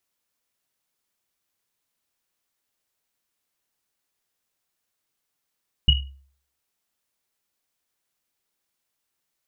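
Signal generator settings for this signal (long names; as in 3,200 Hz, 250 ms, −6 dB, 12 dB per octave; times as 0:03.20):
drum after Risset, pitch 68 Hz, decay 0.52 s, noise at 2,900 Hz, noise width 100 Hz, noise 40%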